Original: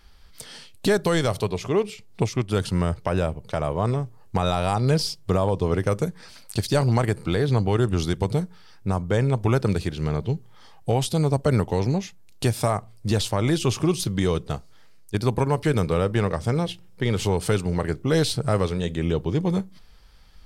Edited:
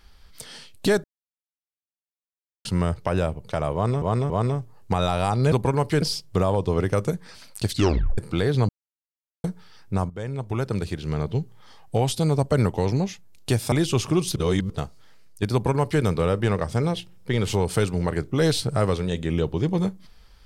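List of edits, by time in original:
1.04–2.65 s: mute
3.74–4.02 s: loop, 3 plays
6.63 s: tape stop 0.49 s
7.63–8.38 s: mute
9.04–10.29 s: fade in, from -13 dB
12.66–13.44 s: delete
14.08–14.42 s: reverse
15.25–15.75 s: copy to 4.96 s

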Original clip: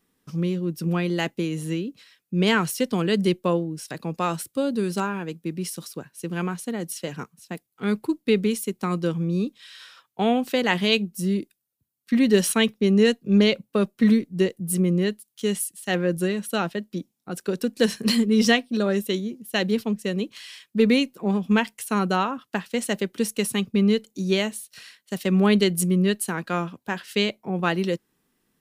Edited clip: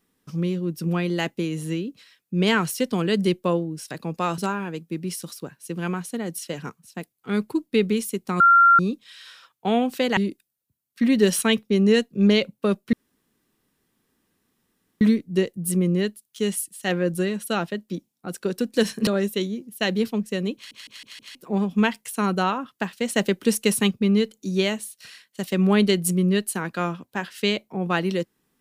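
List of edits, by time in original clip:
4.38–4.92 s: delete
8.94–9.33 s: bleep 1.38 kHz -10.5 dBFS
10.71–11.28 s: delete
14.04 s: insert room tone 2.08 s
18.10–18.80 s: delete
20.28 s: stutter in place 0.16 s, 5 plays
22.89–23.64 s: gain +4 dB

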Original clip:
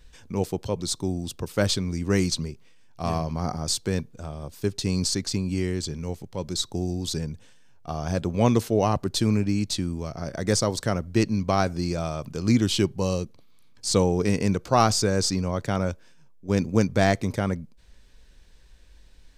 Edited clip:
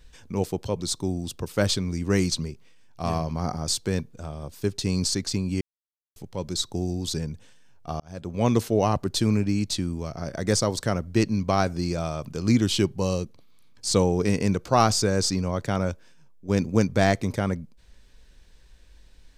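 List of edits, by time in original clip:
5.61–6.16 s: mute
8.00–8.58 s: fade in

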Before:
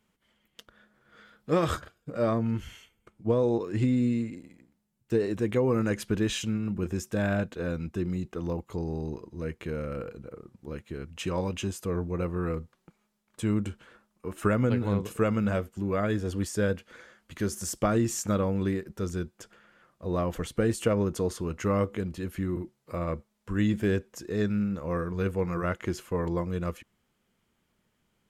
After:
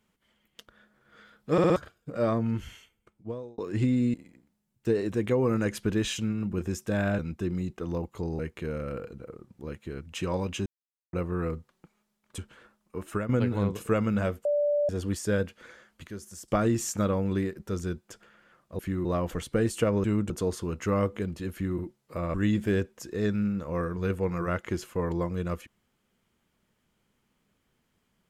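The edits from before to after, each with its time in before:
1.52 s: stutter in place 0.06 s, 4 plays
2.67–3.58 s: fade out
4.14–4.39 s: delete
7.44–7.74 s: delete
8.94–9.43 s: delete
11.70–12.17 s: mute
13.42–13.68 s: move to 21.08 s
14.29–14.59 s: fade out, to -11.5 dB
15.75–16.19 s: bleep 585 Hz -22 dBFS
17.37–17.78 s: gain -10.5 dB
22.30–22.56 s: copy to 20.09 s
23.12–23.50 s: delete

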